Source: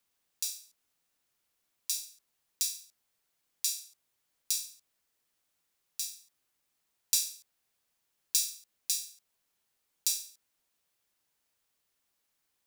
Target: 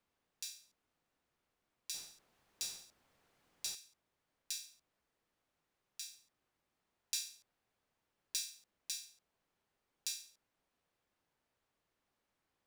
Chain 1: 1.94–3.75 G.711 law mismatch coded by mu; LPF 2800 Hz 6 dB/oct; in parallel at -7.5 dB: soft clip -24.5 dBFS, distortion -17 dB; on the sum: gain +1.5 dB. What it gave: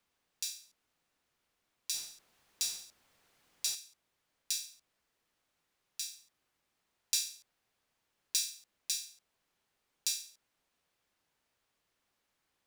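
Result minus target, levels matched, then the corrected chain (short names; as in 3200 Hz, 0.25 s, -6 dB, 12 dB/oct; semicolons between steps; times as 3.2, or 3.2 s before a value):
1000 Hz band -5.0 dB
1.94–3.75 G.711 law mismatch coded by mu; LPF 1100 Hz 6 dB/oct; in parallel at -7.5 dB: soft clip -24.5 dBFS, distortion -26 dB; on the sum: gain +1.5 dB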